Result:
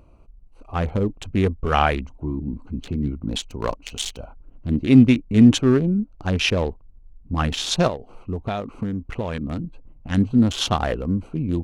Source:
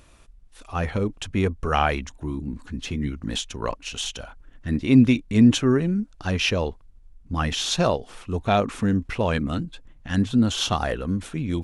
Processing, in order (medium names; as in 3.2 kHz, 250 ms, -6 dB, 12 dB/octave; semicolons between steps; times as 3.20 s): local Wiener filter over 25 samples; 3.43–4.20 s: treble shelf 4 kHz +7.5 dB; 7.87–9.64 s: compression 10:1, threshold -26 dBFS, peak gain reduction 11 dB; trim +3 dB